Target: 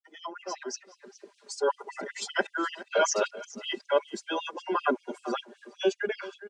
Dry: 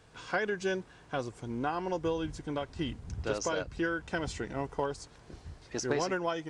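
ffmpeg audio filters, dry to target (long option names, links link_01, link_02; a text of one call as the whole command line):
ffmpeg -i in.wav -filter_complex "[0:a]areverse,aecho=1:1:5:0.91,asplit=2[link_01][link_02];[link_02]acompressor=threshold=-40dB:ratio=6,volume=0.5dB[link_03];[link_01][link_03]amix=inputs=2:normalize=0,afftdn=noise_reduction=14:noise_floor=-39,dynaudnorm=framelen=310:gausssize=7:maxgain=16dB,highpass=frequency=75:poles=1,aecho=1:1:416:0.133,adynamicequalizer=threshold=0.0251:dfrequency=610:dqfactor=3.4:tfrequency=610:tqfactor=3.4:attack=5:release=100:ratio=0.375:range=1.5:mode=boostabove:tftype=bell,afftfilt=real='re*gte(b*sr/1024,200*pow(2700/200,0.5+0.5*sin(2*PI*5.2*pts/sr)))':imag='im*gte(b*sr/1024,200*pow(2700/200,0.5+0.5*sin(2*PI*5.2*pts/sr)))':win_size=1024:overlap=0.75,volume=-8.5dB" out.wav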